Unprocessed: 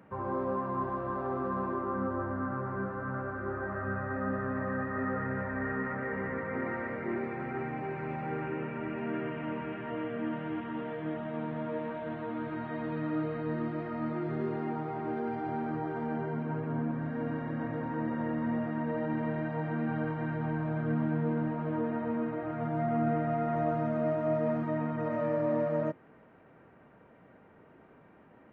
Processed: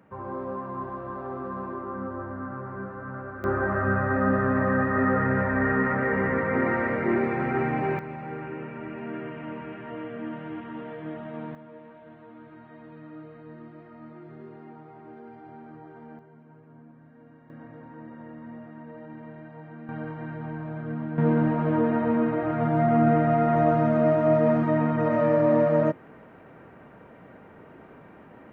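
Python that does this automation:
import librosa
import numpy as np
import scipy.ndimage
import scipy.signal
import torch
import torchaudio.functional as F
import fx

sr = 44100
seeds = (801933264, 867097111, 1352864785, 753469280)

y = fx.gain(x, sr, db=fx.steps((0.0, -1.0), (3.44, 10.0), (7.99, -0.5), (11.55, -11.0), (16.19, -18.0), (17.5, -10.0), (19.89, -2.0), (21.18, 9.0)))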